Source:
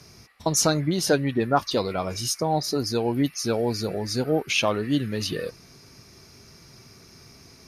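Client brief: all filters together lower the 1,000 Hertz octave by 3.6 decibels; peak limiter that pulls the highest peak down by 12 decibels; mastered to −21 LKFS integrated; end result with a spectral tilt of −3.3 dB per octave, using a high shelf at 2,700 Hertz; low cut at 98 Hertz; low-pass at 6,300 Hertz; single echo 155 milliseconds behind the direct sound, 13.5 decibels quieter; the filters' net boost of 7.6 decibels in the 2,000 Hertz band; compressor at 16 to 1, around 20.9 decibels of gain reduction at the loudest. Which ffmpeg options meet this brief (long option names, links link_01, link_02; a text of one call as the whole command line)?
ffmpeg -i in.wav -af "highpass=98,lowpass=6300,equalizer=frequency=1000:width_type=o:gain=-9,equalizer=frequency=2000:width_type=o:gain=8.5,highshelf=frequency=2700:gain=8.5,acompressor=threshold=-33dB:ratio=16,alimiter=level_in=7dB:limit=-24dB:level=0:latency=1,volume=-7dB,aecho=1:1:155:0.211,volume=20dB" out.wav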